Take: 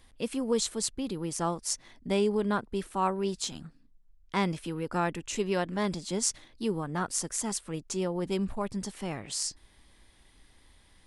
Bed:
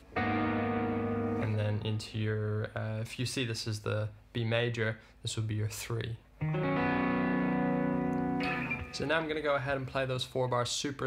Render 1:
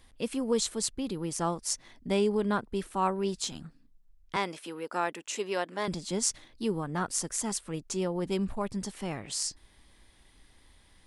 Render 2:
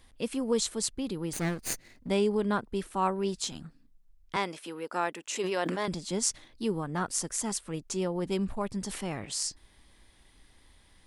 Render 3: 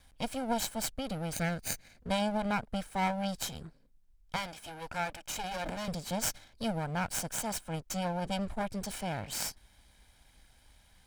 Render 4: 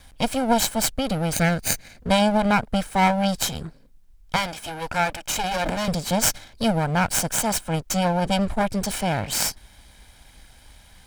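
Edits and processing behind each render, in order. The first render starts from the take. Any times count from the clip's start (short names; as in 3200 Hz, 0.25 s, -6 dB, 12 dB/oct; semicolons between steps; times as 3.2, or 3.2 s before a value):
4.36–5.88 HPF 390 Hz
1.33–2.09 minimum comb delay 0.46 ms; 5.22–5.86 sustainer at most 25 dB/s; 8.84–9.25 sustainer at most 55 dB/s
minimum comb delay 1.3 ms; one-sided clip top -35.5 dBFS
gain +12 dB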